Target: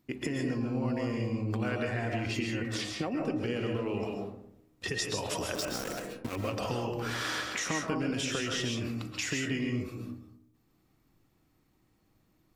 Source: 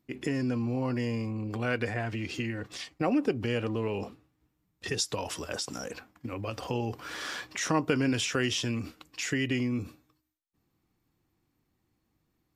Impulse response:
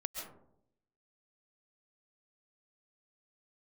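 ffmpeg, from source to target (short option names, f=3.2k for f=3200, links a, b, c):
-filter_complex "[0:a]acompressor=threshold=-35dB:ratio=6,asettb=1/sr,asplit=3[a][b][c];[a]atrim=end=5.554[d];[b]atrim=start=5.55:end=6.36,asetpts=PTS-STARTPTS,afade=t=in:d=0.004:c=qsin,afade=t=out:st=0.806:d=0.004:c=qsin,aeval=exprs='val(0)*gte(abs(val(0)),0.0119)':c=same[e];[c]atrim=start=6.356[f];[d][e]acrossfade=d=0.004:c1=hsin:c2=qsin[g];[g][f]acrossfade=d=0.004:c1=qsin:c2=hsin[h];[1:a]atrim=start_sample=2205[i];[h][i]afir=irnorm=-1:irlink=0,volume=6dB"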